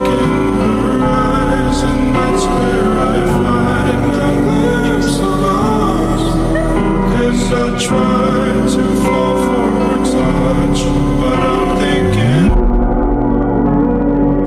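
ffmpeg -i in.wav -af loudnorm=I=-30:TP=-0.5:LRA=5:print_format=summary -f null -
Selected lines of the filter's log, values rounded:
Input Integrated:    -13.3 LUFS
Input True Peak:      -4.6 dBTP
Input LRA:             0.6 LU
Input Threshold:     -23.3 LUFS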